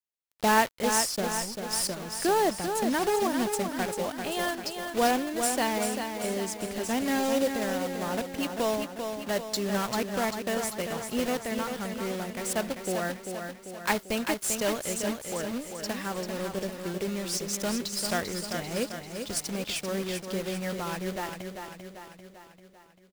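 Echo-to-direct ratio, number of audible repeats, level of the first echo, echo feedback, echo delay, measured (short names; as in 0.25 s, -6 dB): -5.0 dB, 6, -6.5 dB, 55%, 0.393 s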